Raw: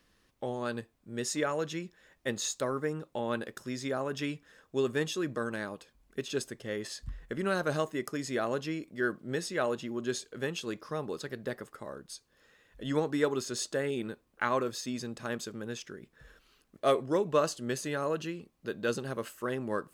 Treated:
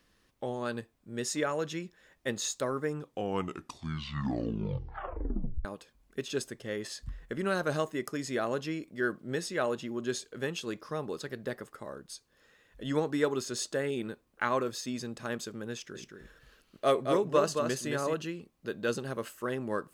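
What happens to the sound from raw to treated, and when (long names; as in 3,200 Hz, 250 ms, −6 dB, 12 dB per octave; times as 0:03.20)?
0:02.86: tape stop 2.79 s
0:15.73–0:18.14: single-tap delay 220 ms −5 dB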